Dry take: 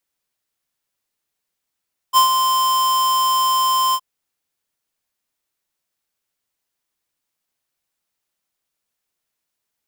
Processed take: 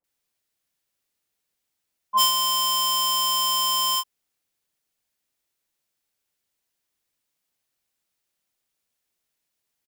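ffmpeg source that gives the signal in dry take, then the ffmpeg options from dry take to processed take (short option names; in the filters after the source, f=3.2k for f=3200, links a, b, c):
-f lavfi -i "aevalsrc='0.299*(2*lt(mod(1040*t,1),0.5)-1)':d=1.867:s=44100,afade=t=in:d=0.04,afade=t=out:st=0.04:d=0.109:silence=0.473,afade=t=out:st=1.81:d=0.057"
-filter_complex "[0:a]acrossover=split=1100[a][b];[b]adelay=40[c];[a][c]amix=inputs=2:normalize=0"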